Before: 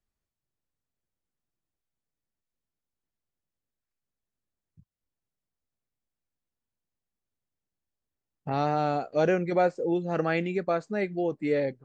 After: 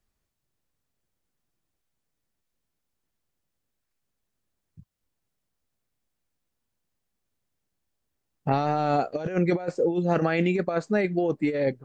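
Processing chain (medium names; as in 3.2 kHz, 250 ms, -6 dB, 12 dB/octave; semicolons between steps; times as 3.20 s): compressor with a negative ratio -28 dBFS, ratio -0.5; trim +5 dB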